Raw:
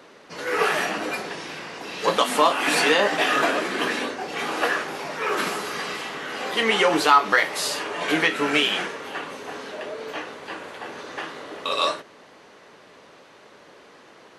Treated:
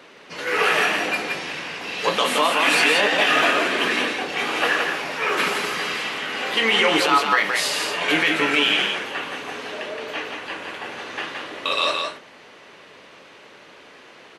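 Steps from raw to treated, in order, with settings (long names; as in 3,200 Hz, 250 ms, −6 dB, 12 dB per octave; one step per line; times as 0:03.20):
parametric band 2,600 Hz +7 dB 1.1 octaves
brickwall limiter −8.5 dBFS, peak gain reduction 7.5 dB
on a send: single-tap delay 170 ms −4.5 dB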